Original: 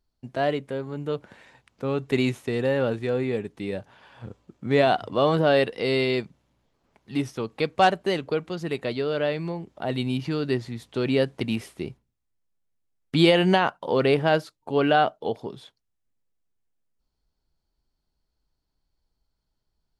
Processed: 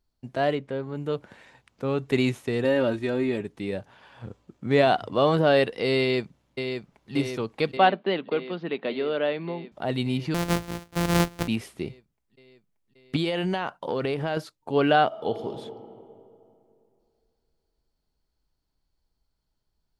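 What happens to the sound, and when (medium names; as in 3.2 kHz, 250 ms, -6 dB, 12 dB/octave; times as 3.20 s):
0.55–0.95 s: distance through air 86 m
2.64–3.41 s: comb 3.2 ms, depth 64%
5.99–7.13 s: echo throw 580 ms, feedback 75%, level -6 dB
7.77–9.72 s: elliptic band-pass 190–3600 Hz
10.34–11.48 s: sorted samples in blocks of 256 samples
13.16–14.37 s: compression, threshold -23 dBFS
15.06–15.49 s: reverb throw, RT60 2.6 s, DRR 5 dB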